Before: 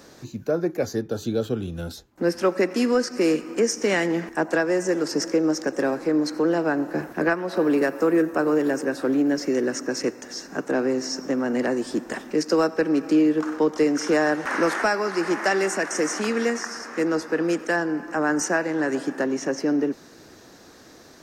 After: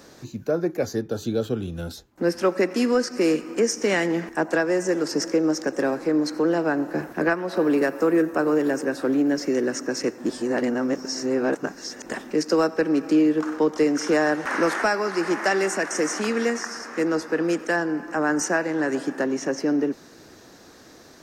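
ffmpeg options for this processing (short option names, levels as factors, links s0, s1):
-filter_complex "[0:a]asplit=3[s0][s1][s2];[s0]atrim=end=10.182[s3];[s1]atrim=start=10.178:end=12.062,asetpts=PTS-STARTPTS,areverse[s4];[s2]atrim=start=12.058[s5];[s3][s4]acrossfade=d=0.004:c1=hsin:c2=hsin[s6];[s6][s5]acrossfade=d=0.004:c1=hsin:c2=hsin"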